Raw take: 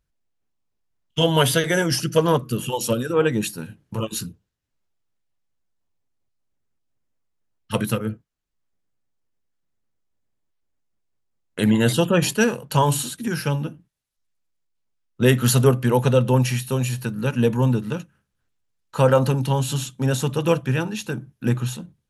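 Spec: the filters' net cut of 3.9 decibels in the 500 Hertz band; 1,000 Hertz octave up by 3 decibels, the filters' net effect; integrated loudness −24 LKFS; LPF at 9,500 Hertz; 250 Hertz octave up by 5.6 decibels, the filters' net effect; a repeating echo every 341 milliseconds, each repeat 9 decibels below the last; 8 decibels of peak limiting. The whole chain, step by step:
low-pass filter 9,500 Hz
parametric band 250 Hz +8.5 dB
parametric band 500 Hz −8 dB
parametric band 1,000 Hz +5 dB
brickwall limiter −10.5 dBFS
repeating echo 341 ms, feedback 35%, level −9 dB
level −2.5 dB

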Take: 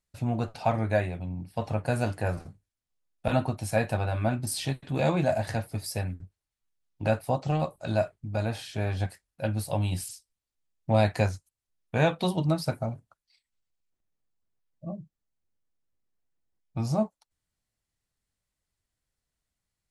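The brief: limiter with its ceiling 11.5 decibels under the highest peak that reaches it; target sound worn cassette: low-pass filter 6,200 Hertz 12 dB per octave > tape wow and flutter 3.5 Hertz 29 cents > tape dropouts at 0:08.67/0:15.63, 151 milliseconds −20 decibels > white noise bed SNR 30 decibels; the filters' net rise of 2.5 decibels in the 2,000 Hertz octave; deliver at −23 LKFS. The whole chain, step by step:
parametric band 2,000 Hz +3.5 dB
brickwall limiter −20.5 dBFS
low-pass filter 6,200 Hz 12 dB per octave
tape wow and flutter 3.5 Hz 29 cents
tape dropouts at 0:08.67/0:15.63, 151 ms −20 dB
white noise bed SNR 30 dB
level +10 dB

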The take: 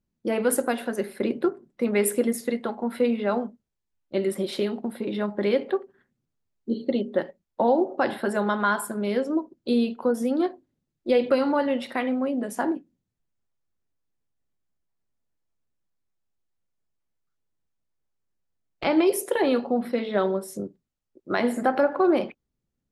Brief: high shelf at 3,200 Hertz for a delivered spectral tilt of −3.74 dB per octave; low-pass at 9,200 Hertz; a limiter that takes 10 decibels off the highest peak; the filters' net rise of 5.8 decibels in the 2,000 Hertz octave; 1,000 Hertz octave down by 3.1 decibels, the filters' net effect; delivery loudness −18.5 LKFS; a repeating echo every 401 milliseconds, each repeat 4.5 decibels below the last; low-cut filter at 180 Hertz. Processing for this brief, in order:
high-pass filter 180 Hz
low-pass filter 9,200 Hz
parametric band 1,000 Hz −7.5 dB
parametric band 2,000 Hz +8.5 dB
high-shelf EQ 3,200 Hz +6 dB
brickwall limiter −16.5 dBFS
repeating echo 401 ms, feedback 60%, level −4.5 dB
level +8.5 dB

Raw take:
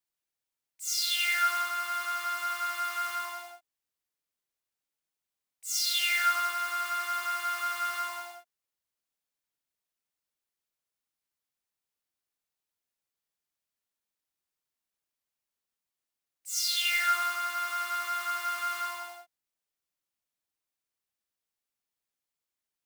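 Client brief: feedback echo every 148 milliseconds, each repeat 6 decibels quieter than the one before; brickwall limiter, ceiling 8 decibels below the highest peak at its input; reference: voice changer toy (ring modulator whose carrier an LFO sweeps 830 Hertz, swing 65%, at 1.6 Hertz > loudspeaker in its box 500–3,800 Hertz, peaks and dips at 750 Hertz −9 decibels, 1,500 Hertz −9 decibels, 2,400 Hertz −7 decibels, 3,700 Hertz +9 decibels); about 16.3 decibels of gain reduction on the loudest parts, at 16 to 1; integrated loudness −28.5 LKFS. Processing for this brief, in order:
downward compressor 16 to 1, threshold −38 dBFS
brickwall limiter −36 dBFS
repeating echo 148 ms, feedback 50%, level −6 dB
ring modulator whose carrier an LFO sweeps 830 Hz, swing 65%, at 1.6 Hz
loudspeaker in its box 500–3,800 Hz, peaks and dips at 750 Hz −9 dB, 1,500 Hz −9 dB, 2,400 Hz −7 dB, 3,700 Hz +9 dB
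level +20.5 dB

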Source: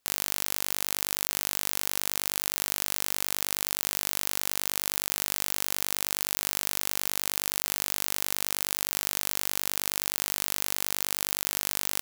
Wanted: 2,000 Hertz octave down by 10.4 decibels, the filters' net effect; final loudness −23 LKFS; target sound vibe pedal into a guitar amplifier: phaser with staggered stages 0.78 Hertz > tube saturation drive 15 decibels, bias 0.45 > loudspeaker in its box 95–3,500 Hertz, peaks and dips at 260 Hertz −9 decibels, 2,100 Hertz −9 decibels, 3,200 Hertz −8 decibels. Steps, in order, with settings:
parametric band 2,000 Hz −8.5 dB
phaser with staggered stages 0.78 Hz
tube saturation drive 15 dB, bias 0.45
loudspeaker in its box 95–3,500 Hz, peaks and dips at 260 Hz −9 dB, 2,100 Hz −9 dB, 3,200 Hz −8 dB
level +26.5 dB

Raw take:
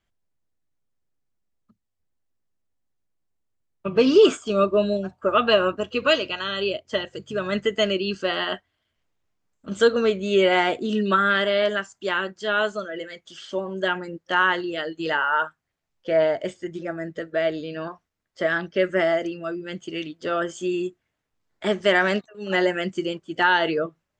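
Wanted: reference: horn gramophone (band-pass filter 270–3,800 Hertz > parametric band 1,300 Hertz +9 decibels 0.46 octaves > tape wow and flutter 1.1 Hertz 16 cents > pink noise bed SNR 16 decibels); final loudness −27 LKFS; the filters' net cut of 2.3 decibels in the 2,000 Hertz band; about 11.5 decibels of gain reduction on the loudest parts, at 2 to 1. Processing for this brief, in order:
parametric band 2,000 Hz −8.5 dB
downward compressor 2 to 1, threshold −32 dBFS
band-pass filter 270–3,800 Hz
parametric band 1,300 Hz +9 dB 0.46 octaves
tape wow and flutter 1.1 Hz 16 cents
pink noise bed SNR 16 dB
level +4 dB

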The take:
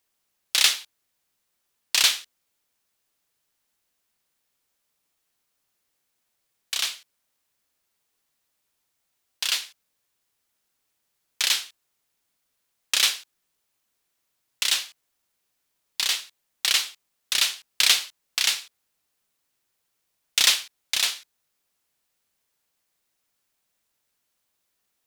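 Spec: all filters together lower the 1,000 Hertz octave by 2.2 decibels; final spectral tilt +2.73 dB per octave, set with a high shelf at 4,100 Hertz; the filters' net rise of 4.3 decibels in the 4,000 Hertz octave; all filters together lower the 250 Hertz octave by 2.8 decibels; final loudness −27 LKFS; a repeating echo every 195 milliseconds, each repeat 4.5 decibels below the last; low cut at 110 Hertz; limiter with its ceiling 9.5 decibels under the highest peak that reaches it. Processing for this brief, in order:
high-pass filter 110 Hz
parametric band 250 Hz −3.5 dB
parametric band 1,000 Hz −3 dB
parametric band 4,000 Hz +7 dB
high-shelf EQ 4,100 Hz −3 dB
brickwall limiter −8 dBFS
repeating echo 195 ms, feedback 60%, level −4.5 dB
level −4 dB

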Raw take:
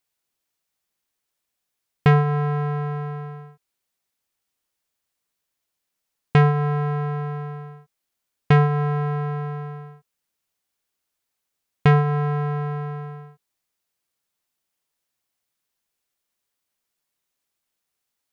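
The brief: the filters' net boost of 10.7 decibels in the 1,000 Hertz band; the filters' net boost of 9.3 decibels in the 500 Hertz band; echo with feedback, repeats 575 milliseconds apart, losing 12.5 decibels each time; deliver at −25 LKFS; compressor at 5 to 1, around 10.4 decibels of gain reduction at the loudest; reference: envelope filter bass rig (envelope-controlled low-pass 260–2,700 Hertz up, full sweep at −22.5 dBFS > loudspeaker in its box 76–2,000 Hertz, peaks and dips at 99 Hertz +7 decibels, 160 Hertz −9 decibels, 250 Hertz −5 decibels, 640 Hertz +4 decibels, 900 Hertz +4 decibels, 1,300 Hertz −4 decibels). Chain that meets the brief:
parametric band 500 Hz +9 dB
parametric band 1,000 Hz +8.5 dB
downward compressor 5 to 1, threshold −17 dBFS
repeating echo 575 ms, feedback 24%, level −12.5 dB
envelope-controlled low-pass 260–2,700 Hz up, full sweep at −22.5 dBFS
loudspeaker in its box 76–2,000 Hz, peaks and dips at 99 Hz +7 dB, 160 Hz −9 dB, 250 Hz −5 dB, 640 Hz +4 dB, 900 Hz +4 dB, 1,300 Hz −4 dB
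level −1.5 dB

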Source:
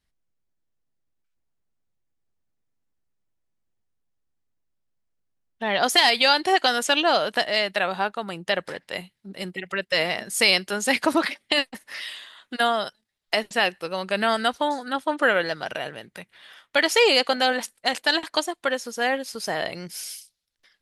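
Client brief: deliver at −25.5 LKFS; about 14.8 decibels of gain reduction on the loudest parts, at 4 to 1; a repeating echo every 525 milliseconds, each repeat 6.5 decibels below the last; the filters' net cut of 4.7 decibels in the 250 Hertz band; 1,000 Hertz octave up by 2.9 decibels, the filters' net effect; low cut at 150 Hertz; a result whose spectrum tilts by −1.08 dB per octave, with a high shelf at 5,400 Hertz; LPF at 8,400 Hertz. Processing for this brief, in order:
high-pass filter 150 Hz
low-pass filter 8,400 Hz
parametric band 250 Hz −6 dB
parametric band 1,000 Hz +4.5 dB
high-shelf EQ 5,400 Hz +4 dB
downward compressor 4 to 1, threshold −30 dBFS
repeating echo 525 ms, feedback 47%, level −6.5 dB
level +6.5 dB

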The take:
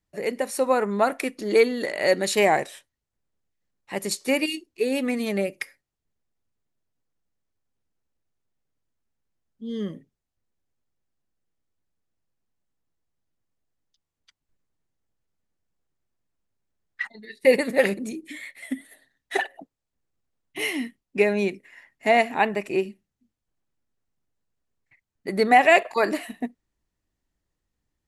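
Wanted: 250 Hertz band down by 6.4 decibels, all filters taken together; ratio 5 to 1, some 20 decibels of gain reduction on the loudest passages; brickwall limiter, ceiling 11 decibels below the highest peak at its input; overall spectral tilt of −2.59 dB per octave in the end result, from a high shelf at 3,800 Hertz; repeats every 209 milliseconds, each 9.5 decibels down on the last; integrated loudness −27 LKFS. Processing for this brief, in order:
parametric band 250 Hz −8 dB
high-shelf EQ 3,800 Hz +7 dB
downward compressor 5 to 1, threshold −35 dBFS
brickwall limiter −30.5 dBFS
repeating echo 209 ms, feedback 33%, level −9.5 dB
level +14.5 dB

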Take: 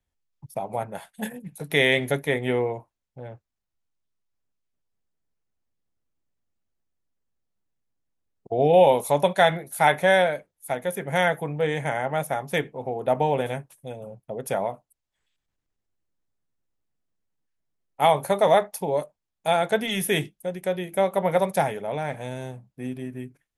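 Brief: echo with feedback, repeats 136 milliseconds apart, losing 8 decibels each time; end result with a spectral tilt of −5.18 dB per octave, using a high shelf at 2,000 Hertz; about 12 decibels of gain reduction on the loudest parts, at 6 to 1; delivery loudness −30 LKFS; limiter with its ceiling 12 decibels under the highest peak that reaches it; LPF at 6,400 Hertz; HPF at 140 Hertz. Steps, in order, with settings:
high-pass filter 140 Hz
low-pass filter 6,400 Hz
high-shelf EQ 2,000 Hz −7 dB
downward compressor 6 to 1, threshold −26 dBFS
brickwall limiter −26.5 dBFS
repeating echo 136 ms, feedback 40%, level −8 dB
level +7 dB

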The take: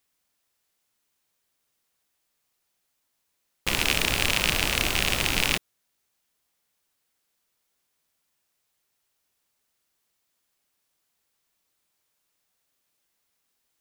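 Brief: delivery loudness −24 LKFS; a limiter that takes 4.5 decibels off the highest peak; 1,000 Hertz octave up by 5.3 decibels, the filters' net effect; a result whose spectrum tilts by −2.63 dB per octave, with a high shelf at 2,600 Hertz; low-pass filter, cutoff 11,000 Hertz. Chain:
low-pass filter 11,000 Hz
parametric band 1,000 Hz +6 dB
high-shelf EQ 2,600 Hz +4 dB
level −1 dB
brickwall limiter −5.5 dBFS

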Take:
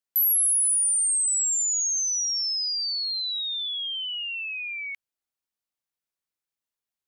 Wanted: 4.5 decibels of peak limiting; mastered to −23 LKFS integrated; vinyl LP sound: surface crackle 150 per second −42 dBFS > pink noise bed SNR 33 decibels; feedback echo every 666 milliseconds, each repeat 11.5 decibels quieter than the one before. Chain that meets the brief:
brickwall limiter −22.5 dBFS
repeating echo 666 ms, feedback 27%, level −11.5 dB
surface crackle 150 per second −42 dBFS
pink noise bed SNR 33 dB
level +1 dB

